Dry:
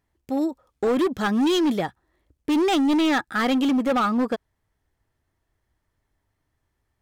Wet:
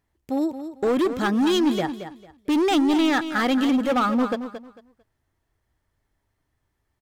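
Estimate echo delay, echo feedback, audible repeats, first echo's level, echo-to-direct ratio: 224 ms, 23%, 2, −10.5 dB, −10.5 dB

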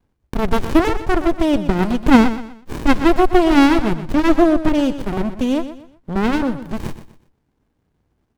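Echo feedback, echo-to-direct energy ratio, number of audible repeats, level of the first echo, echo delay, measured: 33%, −12.0 dB, 3, −12.5 dB, 123 ms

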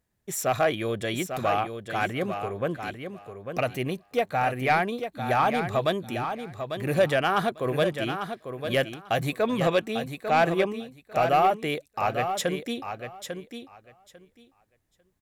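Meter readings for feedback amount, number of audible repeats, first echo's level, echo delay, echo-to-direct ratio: 16%, 2, −8.0 dB, 847 ms, −8.0 dB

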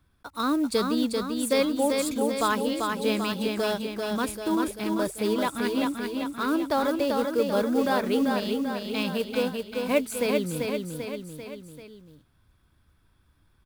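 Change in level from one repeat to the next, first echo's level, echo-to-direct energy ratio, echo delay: −5.0 dB, −4.0 dB, −2.5 dB, 391 ms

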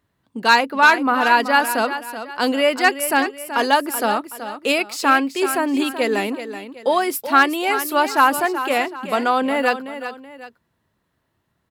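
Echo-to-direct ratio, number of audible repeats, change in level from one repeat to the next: −10.5 dB, 2, −8.5 dB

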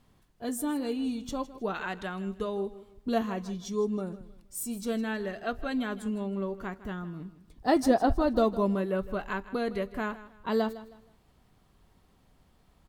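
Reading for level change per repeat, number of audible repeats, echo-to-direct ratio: −10.5 dB, 2, −15.5 dB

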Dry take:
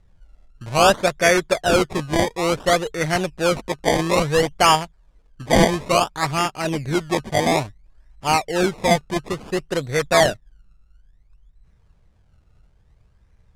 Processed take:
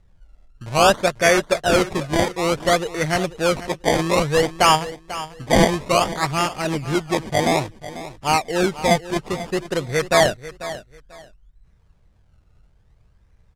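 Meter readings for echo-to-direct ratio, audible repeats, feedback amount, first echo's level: −14.5 dB, 2, 22%, −14.5 dB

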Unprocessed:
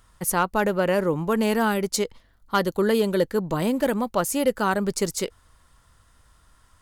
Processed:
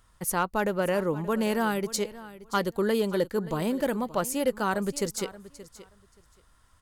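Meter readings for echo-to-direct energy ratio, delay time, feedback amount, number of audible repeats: −17.0 dB, 577 ms, 17%, 2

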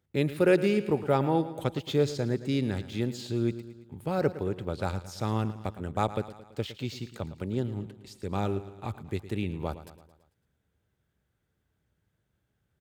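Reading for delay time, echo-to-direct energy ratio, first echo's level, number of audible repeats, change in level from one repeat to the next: 111 ms, −13.0 dB, −14.5 dB, 4, −5.0 dB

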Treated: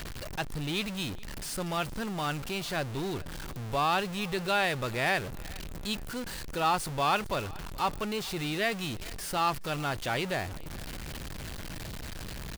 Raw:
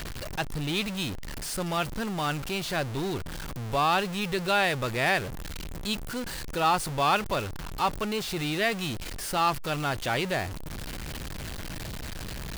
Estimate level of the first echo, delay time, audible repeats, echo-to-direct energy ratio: −23.0 dB, 426 ms, 2, −22.5 dB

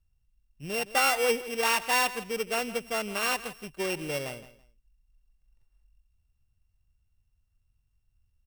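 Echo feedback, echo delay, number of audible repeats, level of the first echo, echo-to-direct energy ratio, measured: 22%, 165 ms, 2, −16.0 dB, −16.0 dB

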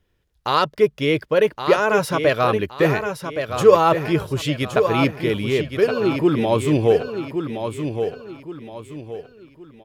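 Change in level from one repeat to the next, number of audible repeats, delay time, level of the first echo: −9.0 dB, 4, 1,119 ms, −7.5 dB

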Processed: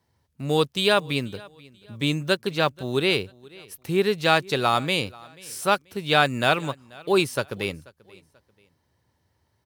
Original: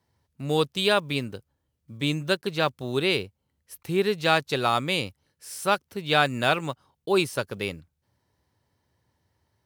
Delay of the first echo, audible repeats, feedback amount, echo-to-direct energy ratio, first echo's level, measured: 486 ms, 2, 33%, −23.0 dB, −23.5 dB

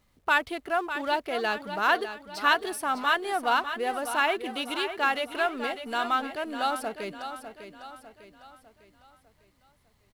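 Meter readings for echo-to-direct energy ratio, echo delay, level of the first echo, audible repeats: −9.0 dB, 601 ms, −10.0 dB, 4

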